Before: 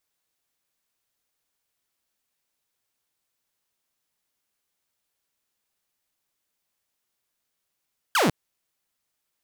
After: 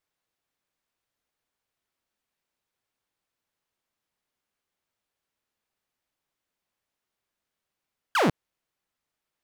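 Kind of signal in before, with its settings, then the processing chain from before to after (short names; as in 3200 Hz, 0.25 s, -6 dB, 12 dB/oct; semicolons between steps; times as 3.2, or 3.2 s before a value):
laser zap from 1700 Hz, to 130 Hz, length 0.15 s saw, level -15.5 dB
high shelf 4300 Hz -11 dB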